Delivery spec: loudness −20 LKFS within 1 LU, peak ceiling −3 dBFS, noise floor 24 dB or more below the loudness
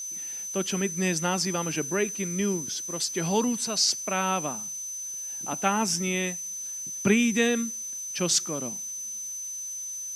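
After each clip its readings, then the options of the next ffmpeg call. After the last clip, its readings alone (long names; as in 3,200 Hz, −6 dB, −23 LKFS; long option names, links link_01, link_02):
interfering tone 6,100 Hz; level of the tone −33 dBFS; background noise floor −36 dBFS; target noise floor −51 dBFS; integrated loudness −27.0 LKFS; sample peak −8.0 dBFS; target loudness −20.0 LKFS
→ -af "bandreject=frequency=6100:width=30"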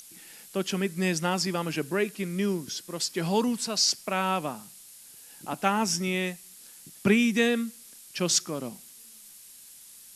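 interfering tone none found; background noise floor −50 dBFS; target noise floor −52 dBFS
→ -af "afftdn=noise_reduction=6:noise_floor=-50"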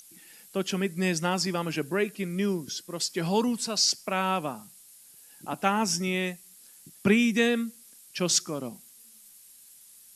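background noise floor −53 dBFS; integrated loudness −27.5 LKFS; sample peak −8.5 dBFS; target loudness −20.0 LKFS
→ -af "volume=7.5dB,alimiter=limit=-3dB:level=0:latency=1"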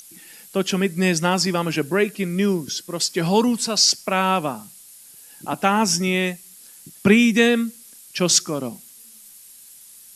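integrated loudness −20.0 LKFS; sample peak −3.0 dBFS; background noise floor −46 dBFS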